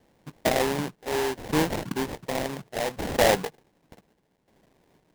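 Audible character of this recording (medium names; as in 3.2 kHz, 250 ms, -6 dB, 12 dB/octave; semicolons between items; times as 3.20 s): a quantiser's noise floor 12-bit, dither none; tremolo saw down 0.67 Hz, depth 75%; aliases and images of a low sample rate 1.3 kHz, jitter 20%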